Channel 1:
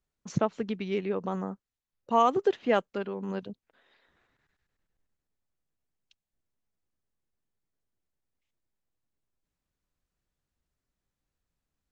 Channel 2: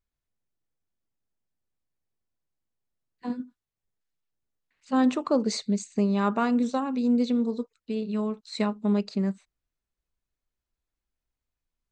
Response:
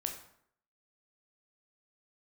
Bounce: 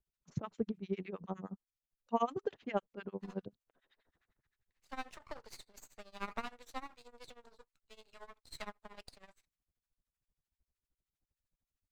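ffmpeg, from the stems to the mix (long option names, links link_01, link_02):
-filter_complex "[0:a]lowshelf=frequency=150:gain=9,acrossover=split=1100[link_01][link_02];[link_01]aeval=exprs='val(0)*(1-1/2+1/2*cos(2*PI*9.8*n/s))':channel_layout=same[link_03];[link_02]aeval=exprs='val(0)*(1-1/2-1/2*cos(2*PI*9.8*n/s))':channel_layout=same[link_04];[link_03][link_04]amix=inputs=2:normalize=0,volume=-3dB[link_05];[1:a]deesser=0.85,highpass=frequency=680:width=0.5412,highpass=frequency=680:width=1.3066,aeval=exprs='max(val(0),0)':channel_layout=same,volume=-4.5dB[link_06];[link_05][link_06]amix=inputs=2:normalize=0,tremolo=f=13:d=0.9"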